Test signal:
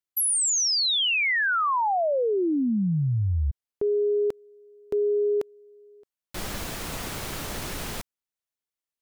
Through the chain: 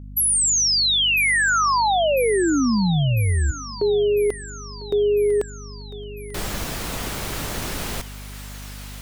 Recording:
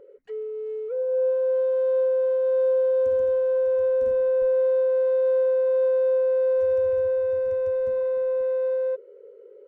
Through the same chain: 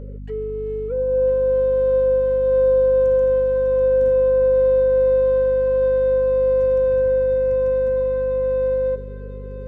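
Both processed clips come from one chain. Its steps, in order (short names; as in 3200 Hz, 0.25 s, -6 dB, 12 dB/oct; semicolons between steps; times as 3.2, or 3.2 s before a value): hum 50 Hz, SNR 15 dB; thinning echo 1 s, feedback 66%, high-pass 1100 Hz, level -10.5 dB; gain +4.5 dB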